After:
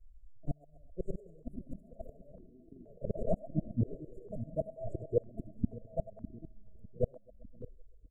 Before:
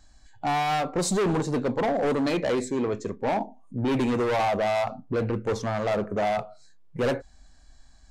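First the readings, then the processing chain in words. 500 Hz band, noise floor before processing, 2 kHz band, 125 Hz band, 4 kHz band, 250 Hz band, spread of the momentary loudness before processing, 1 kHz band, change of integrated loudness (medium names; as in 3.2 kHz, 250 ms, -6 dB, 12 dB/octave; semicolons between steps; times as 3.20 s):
-13.5 dB, -53 dBFS, under -40 dB, -7.0 dB, under -40 dB, -13.5 dB, 6 LU, -26.5 dB, -13.0 dB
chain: RIAA curve playback; gate -22 dBFS, range -25 dB; dynamic bell 310 Hz, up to +4 dB, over -30 dBFS, Q 0.91; comb 4.6 ms, depth 37%; slow attack 120 ms; gain riding within 4 dB 2 s; inverted gate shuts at -15 dBFS, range -39 dB; two-band feedback delay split 420 Hz, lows 602 ms, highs 129 ms, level -12 dB; ever faster or slower copies 723 ms, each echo +5 st, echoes 2; brick-wall FIR band-stop 690–6700 Hz; stepped phaser 2.1 Hz 830–2000 Hz; trim +1.5 dB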